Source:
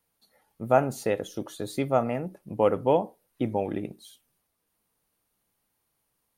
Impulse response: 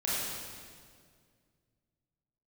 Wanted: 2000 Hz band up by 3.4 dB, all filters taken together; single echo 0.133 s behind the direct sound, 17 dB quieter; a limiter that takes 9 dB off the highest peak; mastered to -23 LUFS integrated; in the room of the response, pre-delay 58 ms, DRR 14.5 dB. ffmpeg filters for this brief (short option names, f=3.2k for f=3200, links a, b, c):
-filter_complex "[0:a]equalizer=f=2k:t=o:g=4.5,alimiter=limit=-16dB:level=0:latency=1,aecho=1:1:133:0.141,asplit=2[a][b];[1:a]atrim=start_sample=2205,adelay=58[c];[b][c]afir=irnorm=-1:irlink=0,volume=-22.5dB[d];[a][d]amix=inputs=2:normalize=0,volume=8dB"